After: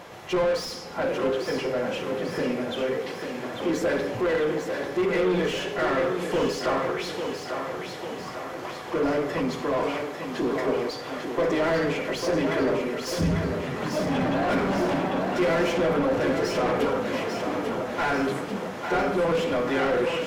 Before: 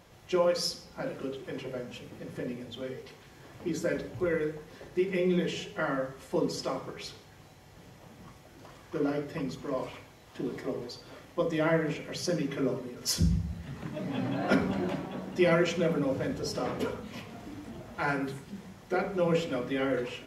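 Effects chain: high shelf 7200 Hz +8.5 dB; overdrive pedal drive 29 dB, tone 1100 Hz, clips at -13.5 dBFS; on a send: thinning echo 0.846 s, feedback 57%, high-pass 170 Hz, level -6 dB; on the sum: gain -2 dB

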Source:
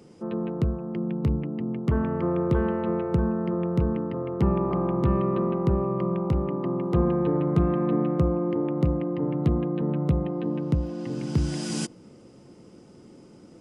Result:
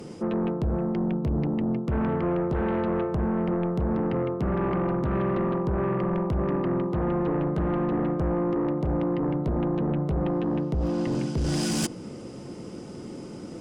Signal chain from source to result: reverse; compressor 5:1, threshold -31 dBFS, peak gain reduction 14 dB; reverse; sine folder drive 7 dB, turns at -21.5 dBFS

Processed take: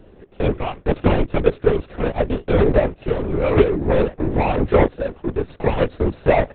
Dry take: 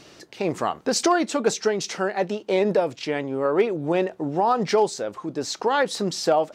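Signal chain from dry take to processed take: median filter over 41 samples; LPC vocoder at 8 kHz whisper; gain +7 dB

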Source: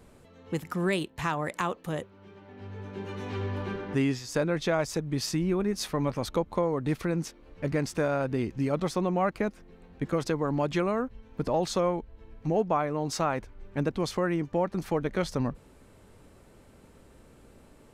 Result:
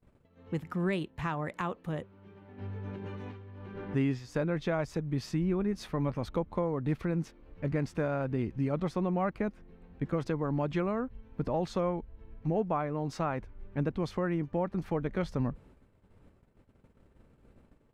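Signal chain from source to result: gate -53 dBFS, range -25 dB; tone controls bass +5 dB, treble -11 dB; 2.58–3.78 negative-ratio compressor -37 dBFS, ratio -1; gain -5 dB

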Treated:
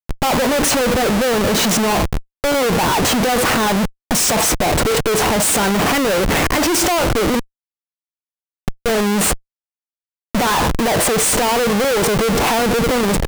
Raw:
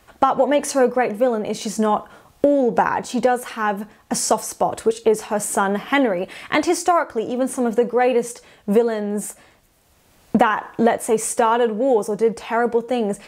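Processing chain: limiter -12.5 dBFS, peak gain reduction 9 dB; 7.39–8.86 flipped gate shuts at -27 dBFS, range -28 dB; Schmitt trigger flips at -35.5 dBFS; gain +8 dB

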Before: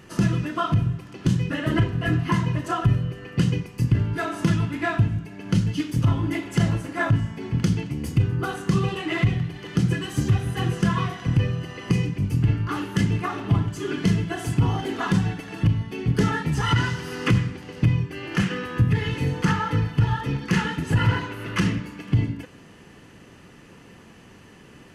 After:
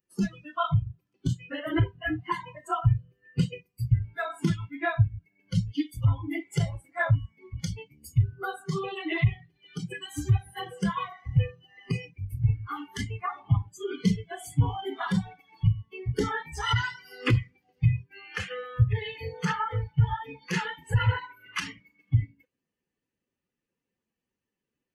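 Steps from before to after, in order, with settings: per-bin expansion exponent 1.5; spectral noise reduction 22 dB

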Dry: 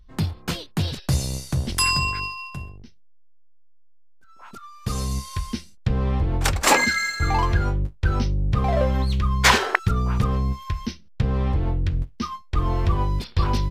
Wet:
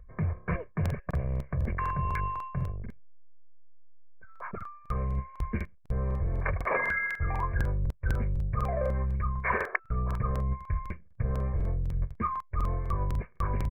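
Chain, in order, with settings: steep low-pass 2300 Hz 96 dB/oct; comb 1.8 ms, depth 82%; harmonic-percussive split harmonic -8 dB; reverse; compressor 6:1, threshold -33 dBFS, peak gain reduction 20 dB; reverse; crackling interface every 0.25 s, samples 2048, repeat, from 0.81; gain +6 dB

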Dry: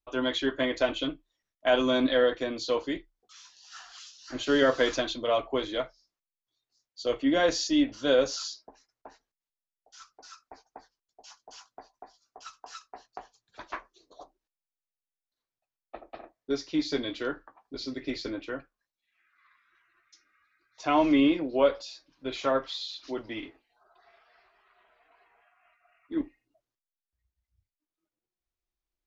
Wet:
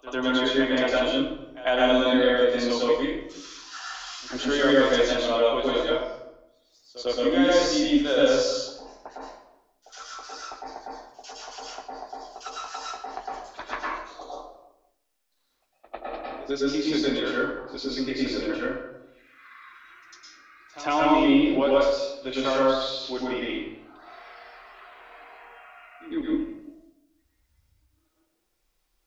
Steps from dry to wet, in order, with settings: bell 130 Hz -5.5 dB 2 oct; de-hum 56.57 Hz, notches 12; reverse echo 0.101 s -22.5 dB; reverb RT60 0.80 s, pre-delay 0.102 s, DRR -5.5 dB; three-band squash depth 40%

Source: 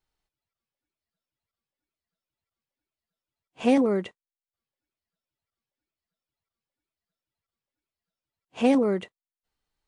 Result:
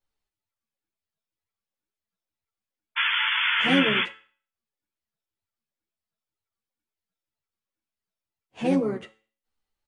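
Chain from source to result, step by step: painted sound noise, 2.96–4.04, 1300–3500 Hz -21 dBFS; resonator 110 Hz, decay 0.43 s, harmonics all, mix 60%; harmoniser -7 st -8 dB; ensemble effect; gain +5.5 dB

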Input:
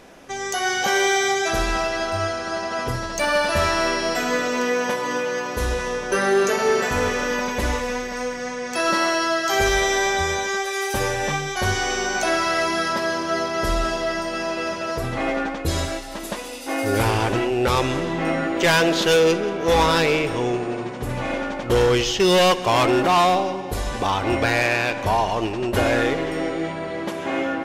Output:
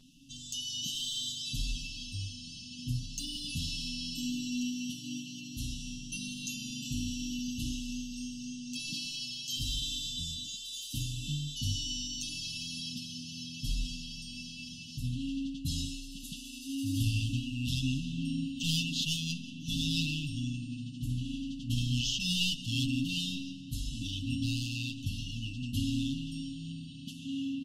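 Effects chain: brick-wall FIR band-stop 290–2600 Hz; high shelf 8500 Hz -6 dB; comb 7.4 ms, depth 78%; gain -8.5 dB

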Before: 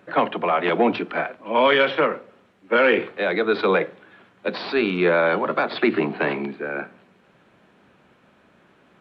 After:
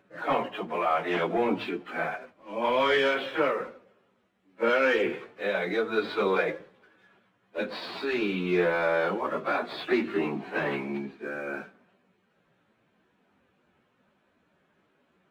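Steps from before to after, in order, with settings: sample leveller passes 1; plain phase-vocoder stretch 1.7×; gain -7.5 dB

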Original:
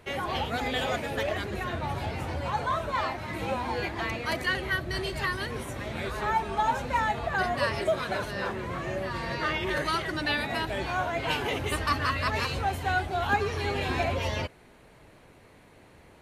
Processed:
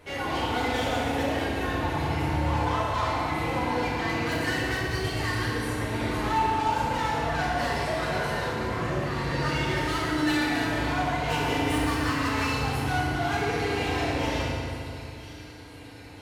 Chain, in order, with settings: thin delay 0.993 s, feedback 59%, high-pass 3400 Hz, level -15 dB; soft clip -30.5 dBFS, distortion -8 dB; FDN reverb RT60 2.5 s, low-frequency decay 1.4×, high-frequency decay 0.7×, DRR -6.5 dB; gain -1 dB

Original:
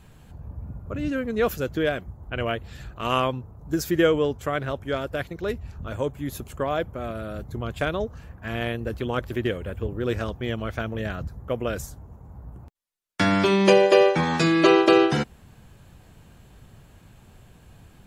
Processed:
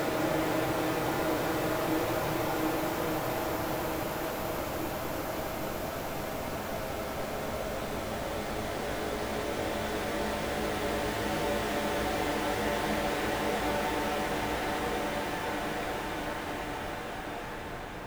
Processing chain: cycle switcher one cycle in 3, inverted; Paulstretch 28×, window 0.50 s, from 1.4; gain -7 dB

